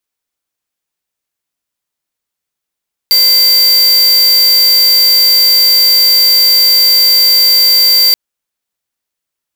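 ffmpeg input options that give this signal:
ffmpeg -f lavfi -i "aevalsrc='0.422*(2*lt(mod(4670*t,1),0.5)-1)':duration=5.03:sample_rate=44100" out.wav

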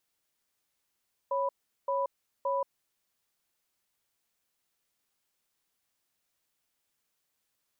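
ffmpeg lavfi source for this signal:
ffmpeg -f lavfi -i "aevalsrc='0.0335*(sin(2*PI*552*t)+sin(2*PI*989*t))*clip(min(mod(t,0.57),0.18-mod(t,0.57))/0.005,0,1)':duration=1.56:sample_rate=44100" out.wav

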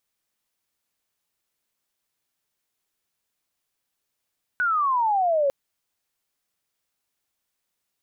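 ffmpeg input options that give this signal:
ffmpeg -f lavfi -i "aevalsrc='pow(10,(-19.5+1.5*t/0.9)/20)*sin(2*PI*1500*0.9/log(540/1500)*(exp(log(540/1500)*t/0.9)-1))':duration=0.9:sample_rate=44100" out.wav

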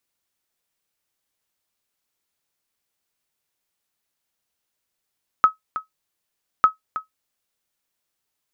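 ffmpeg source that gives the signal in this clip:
ffmpeg -f lavfi -i "aevalsrc='0.596*(sin(2*PI*1280*mod(t,1.2))*exp(-6.91*mod(t,1.2)/0.13)+0.211*sin(2*PI*1280*max(mod(t,1.2)-0.32,0))*exp(-6.91*max(mod(t,1.2)-0.32,0)/0.13))':duration=2.4:sample_rate=44100" out.wav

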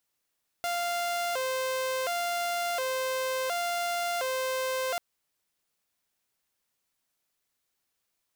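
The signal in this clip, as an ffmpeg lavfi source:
ffmpeg -f lavfi -i "aevalsrc='0.0531*(2*mod((608*t+88/0.7*(0.5-abs(mod(0.7*t,1)-0.5))),1)-1)':duration=4.34:sample_rate=44100" out.wav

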